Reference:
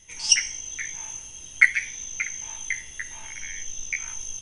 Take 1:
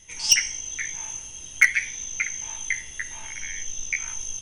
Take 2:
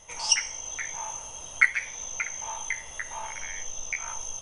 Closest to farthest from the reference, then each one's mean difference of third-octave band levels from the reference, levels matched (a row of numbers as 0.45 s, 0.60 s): 1, 2; 1.5 dB, 4.5 dB